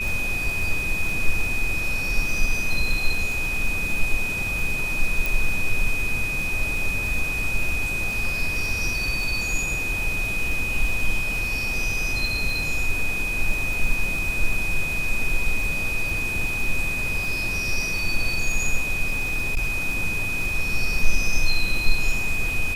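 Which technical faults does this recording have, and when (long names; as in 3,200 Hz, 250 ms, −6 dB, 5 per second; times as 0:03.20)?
surface crackle 46 per second −28 dBFS
whistle 2,500 Hz −25 dBFS
0:05.26: click
0:19.05–0:19.73: clipping −18 dBFS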